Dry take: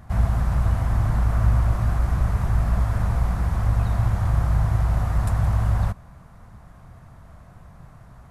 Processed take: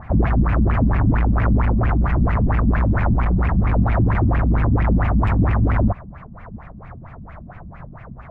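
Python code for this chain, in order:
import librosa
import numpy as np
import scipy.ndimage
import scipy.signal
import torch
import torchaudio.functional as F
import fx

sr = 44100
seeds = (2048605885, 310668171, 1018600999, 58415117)

y = np.clip(x, -10.0 ** (-21.5 / 20.0), 10.0 ** (-21.5 / 20.0))
y = fx.filter_lfo_lowpass(y, sr, shape='sine', hz=4.4, low_hz=200.0, high_hz=2500.0, q=5.1)
y = y * 10.0 ** (6.5 / 20.0)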